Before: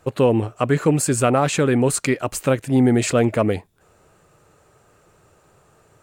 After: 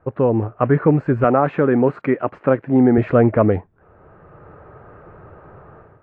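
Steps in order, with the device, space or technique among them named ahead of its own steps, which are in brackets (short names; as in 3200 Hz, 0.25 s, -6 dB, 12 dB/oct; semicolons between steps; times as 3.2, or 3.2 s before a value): bell 75 Hz +2.5 dB 0.94 oct; 1.24–2.98 HPF 170 Hz 12 dB/oct; action camera in a waterproof case (LPF 1700 Hz 24 dB/oct; AGC gain up to 14.5 dB; gain -1 dB; AAC 48 kbps 22050 Hz)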